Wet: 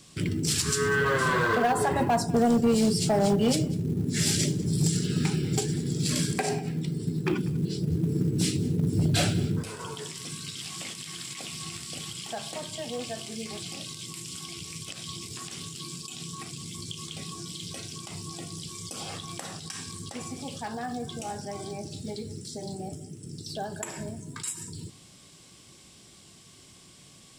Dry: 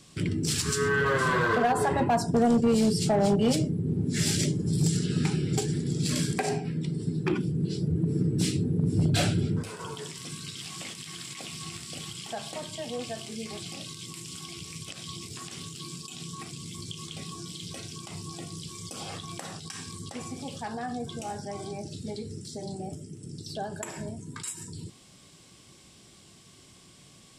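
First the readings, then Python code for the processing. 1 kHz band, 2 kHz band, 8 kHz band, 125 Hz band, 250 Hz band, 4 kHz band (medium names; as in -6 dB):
0.0 dB, +0.5 dB, +2.5 dB, 0.0 dB, 0.0 dB, +2.0 dB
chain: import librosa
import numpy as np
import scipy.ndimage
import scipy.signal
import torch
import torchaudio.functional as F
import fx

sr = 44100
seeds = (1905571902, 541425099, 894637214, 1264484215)

y = fx.high_shelf(x, sr, hz=3300.0, db=3.0)
y = fx.quant_float(y, sr, bits=4)
y = y + 10.0 ** (-20.0 / 20.0) * np.pad(y, (int(195 * sr / 1000.0), 0))[:len(y)]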